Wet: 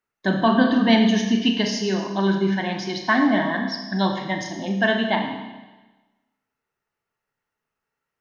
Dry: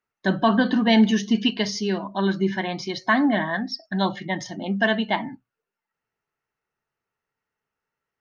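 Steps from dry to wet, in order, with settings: Schroeder reverb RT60 1.2 s, combs from 27 ms, DRR 3.5 dB

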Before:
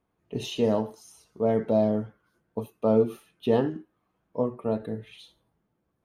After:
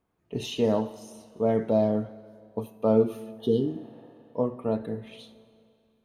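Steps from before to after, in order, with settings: Schroeder reverb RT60 2.4 s, combs from 32 ms, DRR 16 dB; spectral replace 3.41–3.95 s, 490–2900 Hz after

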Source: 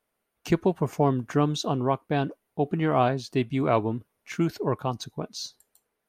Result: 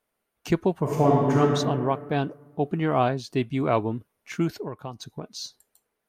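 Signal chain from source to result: 0.82–1.40 s: reverb throw, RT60 1.9 s, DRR -3.5 dB; 4.52–5.42 s: compression 5:1, threshold -31 dBFS, peak gain reduction 10.5 dB

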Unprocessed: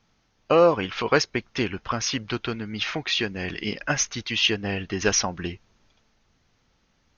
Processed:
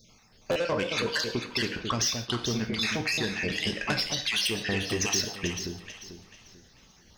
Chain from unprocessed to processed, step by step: random holes in the spectrogram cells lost 39%; saturation -22 dBFS, distortion -9 dB; treble shelf 4.1 kHz +12 dB; band-stop 1.4 kHz, Q 25; gated-style reverb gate 170 ms falling, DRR 7 dB; compression 3:1, threshold -36 dBFS, peak gain reduction 13 dB; echo whose repeats swap between lows and highs 221 ms, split 810 Hz, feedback 56%, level -4.5 dB; buffer glitch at 0.51/3.13 s, samples 512, times 3; trim +7 dB

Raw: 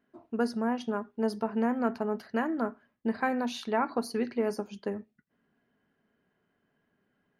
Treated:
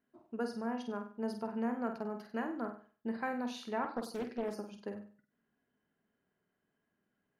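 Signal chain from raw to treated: on a send: flutter echo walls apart 8.3 m, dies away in 0.41 s; 3.82–4.54 s: on the sum: loudspeaker Doppler distortion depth 0.49 ms; trim -8.5 dB

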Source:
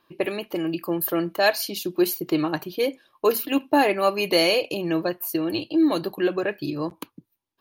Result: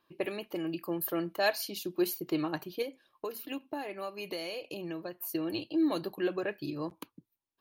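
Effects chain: 2.82–5.20 s: compression 6:1, threshold -27 dBFS, peak gain reduction 12.5 dB; trim -8.5 dB

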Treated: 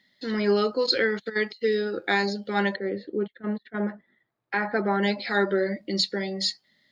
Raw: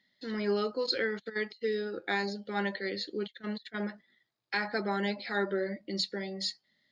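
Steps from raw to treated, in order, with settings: 2.75–5.01 s: low-pass 1 kHz -> 2 kHz 12 dB/octave; trim +7.5 dB

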